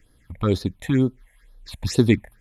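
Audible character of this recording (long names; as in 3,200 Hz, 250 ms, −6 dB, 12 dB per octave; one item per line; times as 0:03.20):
phaser sweep stages 6, 2.1 Hz, lowest notch 320–2,400 Hz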